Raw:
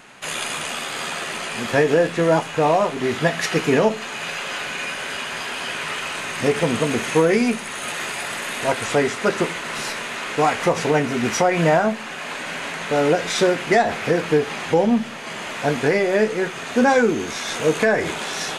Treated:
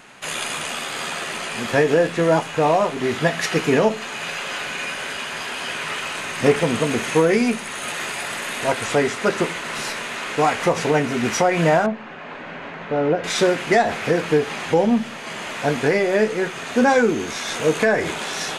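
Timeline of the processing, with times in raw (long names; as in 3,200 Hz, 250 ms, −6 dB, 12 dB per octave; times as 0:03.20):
0:05.13–0:06.56: multiband upward and downward expander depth 40%
0:11.86–0:13.24: head-to-tape spacing loss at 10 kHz 35 dB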